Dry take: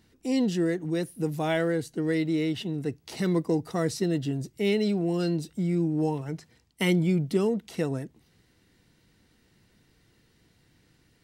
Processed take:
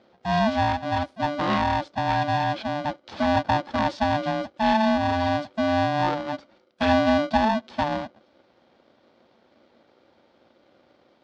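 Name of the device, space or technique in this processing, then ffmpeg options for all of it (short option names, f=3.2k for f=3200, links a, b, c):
ring modulator pedal into a guitar cabinet: -af "aeval=exprs='val(0)*sgn(sin(2*PI*440*n/s))':c=same,highpass=76,equalizer=f=140:t=q:w=4:g=-3,equalizer=f=230:t=q:w=4:g=6,equalizer=f=370:t=q:w=4:g=3,equalizer=f=530:t=q:w=4:g=5,equalizer=f=870:t=q:w=4:g=5,equalizer=f=2.5k:t=q:w=4:g=-5,lowpass=f=4.4k:w=0.5412,lowpass=f=4.4k:w=1.3066,volume=1.5dB"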